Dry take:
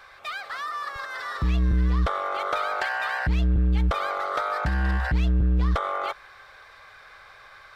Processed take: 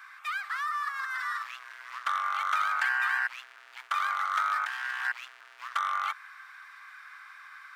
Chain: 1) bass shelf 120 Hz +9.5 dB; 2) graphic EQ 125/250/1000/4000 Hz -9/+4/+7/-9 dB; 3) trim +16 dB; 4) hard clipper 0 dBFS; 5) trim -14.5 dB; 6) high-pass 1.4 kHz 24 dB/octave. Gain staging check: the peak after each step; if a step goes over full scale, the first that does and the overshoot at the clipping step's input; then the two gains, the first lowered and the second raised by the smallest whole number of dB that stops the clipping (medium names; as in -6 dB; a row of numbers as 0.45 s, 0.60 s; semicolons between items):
-9.5 dBFS, -9.5 dBFS, +6.5 dBFS, 0.0 dBFS, -14.5 dBFS, -16.5 dBFS; step 3, 6.5 dB; step 3 +9 dB, step 5 -7.5 dB